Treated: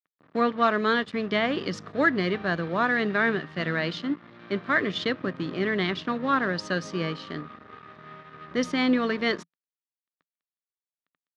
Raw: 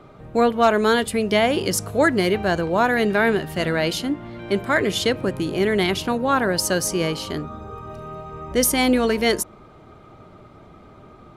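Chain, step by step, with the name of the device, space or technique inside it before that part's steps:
blown loudspeaker (dead-zone distortion −36 dBFS; loudspeaker in its box 130–4,900 Hz, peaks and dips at 170 Hz +7 dB, 270 Hz +6 dB, 840 Hz −4 dB, 1,200 Hz +8 dB, 1,800 Hz +8 dB, 3,600 Hz +4 dB)
level −7.5 dB

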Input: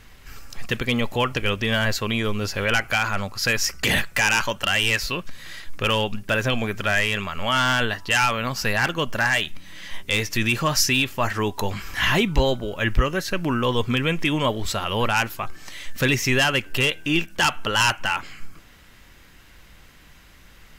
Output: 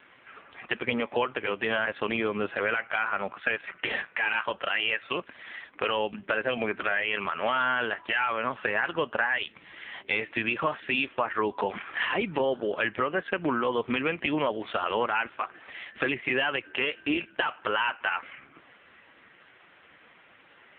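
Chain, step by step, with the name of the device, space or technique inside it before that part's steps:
voicemail (band-pass filter 320–2,800 Hz; downward compressor 6 to 1, threshold −27 dBFS, peak gain reduction 10 dB; level +5 dB; AMR narrowband 5.15 kbit/s 8,000 Hz)

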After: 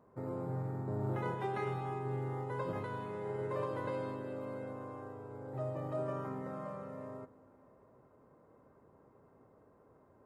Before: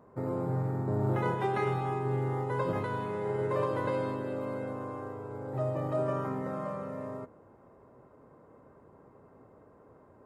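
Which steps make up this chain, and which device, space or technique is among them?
compressed reverb return (on a send at −13.5 dB: convolution reverb RT60 2.8 s, pre-delay 7 ms + downward compressor, threshold −40 dBFS, peak gain reduction 15.5 dB)
on the sum: level −7 dB

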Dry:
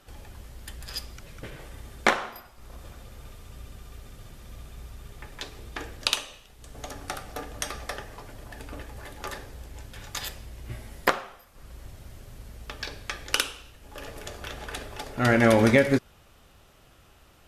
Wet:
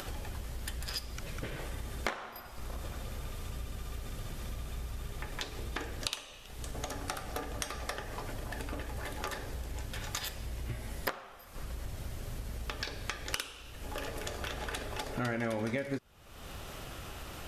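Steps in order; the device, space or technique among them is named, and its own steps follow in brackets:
upward and downward compression (upward compression, threshold −43 dBFS; downward compressor 4 to 1, threshold −43 dBFS, peak gain reduction 23.5 dB)
level +7 dB

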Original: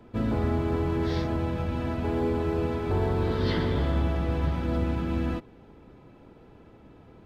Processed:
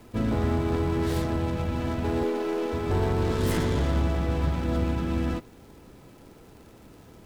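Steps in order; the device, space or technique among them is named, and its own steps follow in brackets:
0:02.23–0:02.73: high-pass filter 270 Hz 24 dB per octave
record under a worn stylus (stylus tracing distortion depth 0.23 ms; surface crackle; pink noise bed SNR 33 dB)
level +1 dB

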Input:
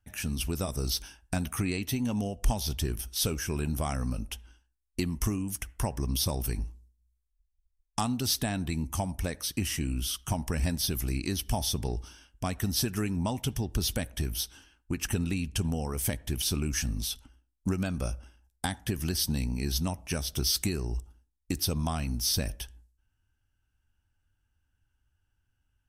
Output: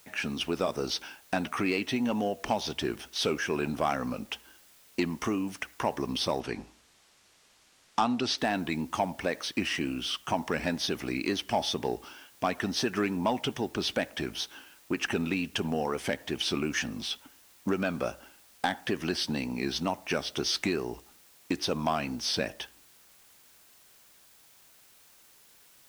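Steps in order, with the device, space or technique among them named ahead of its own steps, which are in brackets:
tape answering machine (band-pass filter 330–3,000 Hz; soft clipping −24 dBFS, distortion −19 dB; tape wow and flutter; white noise bed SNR 26 dB)
0:06.40–0:08.38: low-pass filter 7,300 Hz 12 dB per octave
level +8.5 dB

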